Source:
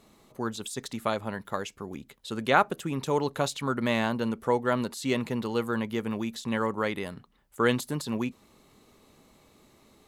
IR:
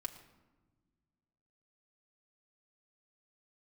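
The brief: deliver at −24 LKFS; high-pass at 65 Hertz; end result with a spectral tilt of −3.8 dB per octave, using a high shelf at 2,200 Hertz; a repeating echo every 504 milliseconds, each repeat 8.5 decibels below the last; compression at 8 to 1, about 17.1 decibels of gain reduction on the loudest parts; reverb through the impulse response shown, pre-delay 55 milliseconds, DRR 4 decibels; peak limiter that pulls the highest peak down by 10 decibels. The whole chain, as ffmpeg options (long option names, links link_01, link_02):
-filter_complex "[0:a]highpass=65,highshelf=frequency=2200:gain=5.5,acompressor=threshold=-32dB:ratio=8,alimiter=level_in=3.5dB:limit=-24dB:level=0:latency=1,volume=-3.5dB,aecho=1:1:504|1008|1512|2016:0.376|0.143|0.0543|0.0206,asplit=2[link_01][link_02];[1:a]atrim=start_sample=2205,adelay=55[link_03];[link_02][link_03]afir=irnorm=-1:irlink=0,volume=-2dB[link_04];[link_01][link_04]amix=inputs=2:normalize=0,volume=13.5dB"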